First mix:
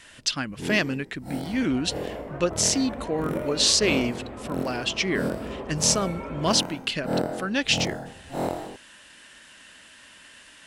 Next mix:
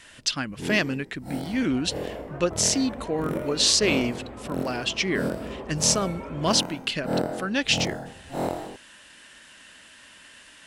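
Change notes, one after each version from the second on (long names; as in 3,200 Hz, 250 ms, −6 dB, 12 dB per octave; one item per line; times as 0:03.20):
second sound: send −11.0 dB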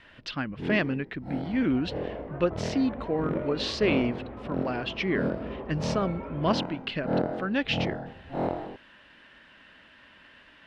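master: add high-frequency loss of the air 350 metres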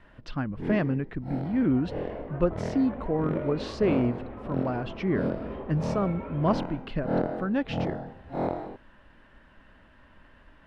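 speech: remove meter weighting curve D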